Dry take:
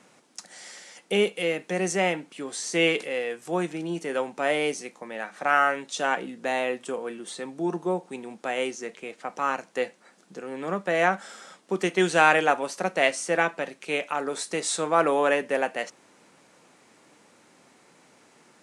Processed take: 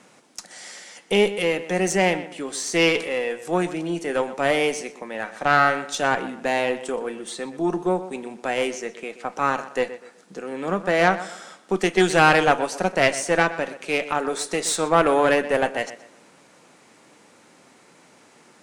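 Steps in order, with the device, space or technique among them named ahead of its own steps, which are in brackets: rockabilly slapback (tube stage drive 13 dB, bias 0.6; tape echo 0.124 s, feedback 34%, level -13 dB, low-pass 3300 Hz); gain +7 dB

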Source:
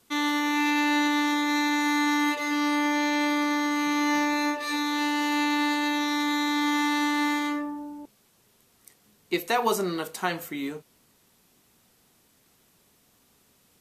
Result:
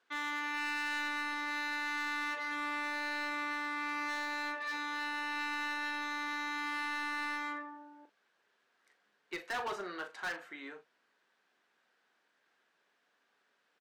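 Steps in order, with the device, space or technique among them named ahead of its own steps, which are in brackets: megaphone (BPF 490–3300 Hz; bell 1600 Hz +11 dB 0.37 oct; hard clip -24.5 dBFS, distortion -11 dB; doubler 40 ms -11.5 dB); gain -9 dB

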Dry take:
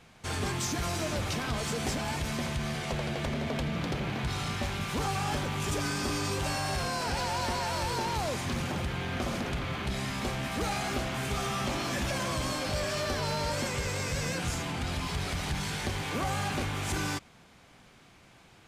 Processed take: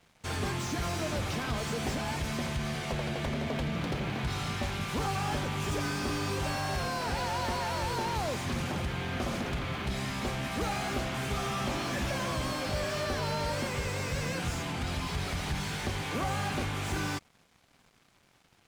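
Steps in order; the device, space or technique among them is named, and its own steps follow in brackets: early transistor amplifier (crossover distortion -57 dBFS; slew limiter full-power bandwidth 61 Hz)

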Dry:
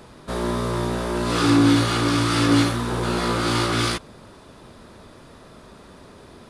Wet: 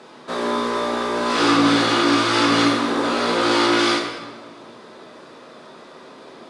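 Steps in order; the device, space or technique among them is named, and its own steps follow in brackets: supermarket ceiling speaker (BPF 320–6300 Hz; reverb RT60 1.4 s, pre-delay 3 ms, DRR 0 dB); gain +2.5 dB

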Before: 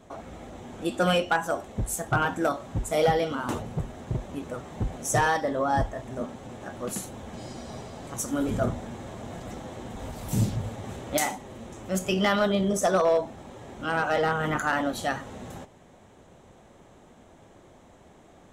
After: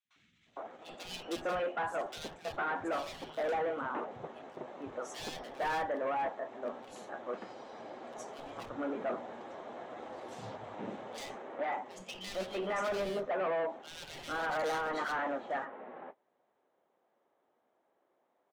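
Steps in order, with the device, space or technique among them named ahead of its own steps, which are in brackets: walkie-talkie (BPF 410–2600 Hz; hard clip -28.5 dBFS, distortion -6 dB; gate -46 dBFS, range -17 dB); three bands offset in time highs, lows, mids 50/460 ms, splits 160/2500 Hz; gain -2 dB

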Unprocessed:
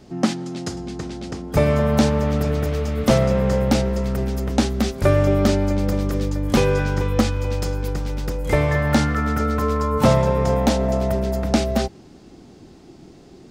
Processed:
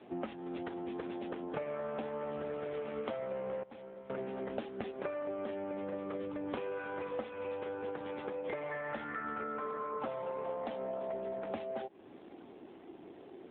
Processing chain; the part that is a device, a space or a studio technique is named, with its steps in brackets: 3.63–4.1 gate -11 dBFS, range -19 dB; voicemail (BPF 390–3200 Hz; compressor 10:1, threshold -35 dBFS, peak gain reduction 21 dB; AMR-NB 7.4 kbps 8000 Hz)

